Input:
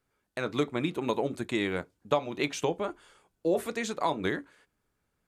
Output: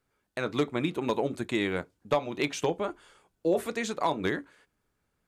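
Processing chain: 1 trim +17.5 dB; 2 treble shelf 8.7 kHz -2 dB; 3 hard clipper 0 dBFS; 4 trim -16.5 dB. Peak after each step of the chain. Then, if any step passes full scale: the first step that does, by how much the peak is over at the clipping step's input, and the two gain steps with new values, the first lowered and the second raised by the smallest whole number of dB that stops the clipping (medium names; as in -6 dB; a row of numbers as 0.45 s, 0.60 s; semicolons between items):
+6.5 dBFS, +6.5 dBFS, 0.0 dBFS, -16.5 dBFS; step 1, 6.5 dB; step 1 +10.5 dB, step 4 -9.5 dB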